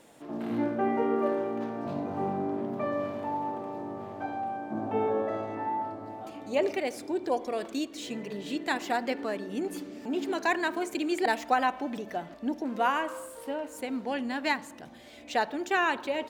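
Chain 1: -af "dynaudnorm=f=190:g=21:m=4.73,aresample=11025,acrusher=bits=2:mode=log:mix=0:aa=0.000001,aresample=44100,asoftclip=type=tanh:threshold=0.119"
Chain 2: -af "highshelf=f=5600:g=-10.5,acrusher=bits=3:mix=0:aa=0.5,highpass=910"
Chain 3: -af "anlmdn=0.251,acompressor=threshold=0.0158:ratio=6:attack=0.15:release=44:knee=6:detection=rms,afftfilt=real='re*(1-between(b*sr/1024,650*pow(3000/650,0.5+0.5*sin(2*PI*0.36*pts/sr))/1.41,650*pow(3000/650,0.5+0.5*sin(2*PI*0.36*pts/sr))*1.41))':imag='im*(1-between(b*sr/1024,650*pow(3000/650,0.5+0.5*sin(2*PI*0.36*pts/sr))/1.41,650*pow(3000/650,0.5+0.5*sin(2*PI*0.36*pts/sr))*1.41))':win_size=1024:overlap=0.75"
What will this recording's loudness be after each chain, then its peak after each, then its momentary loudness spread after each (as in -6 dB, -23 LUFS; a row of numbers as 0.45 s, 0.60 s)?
-25.5 LUFS, -35.0 LUFS, -42.5 LUFS; -18.5 dBFS, -14.0 dBFS, -31.0 dBFS; 7 LU, 20 LU, 5 LU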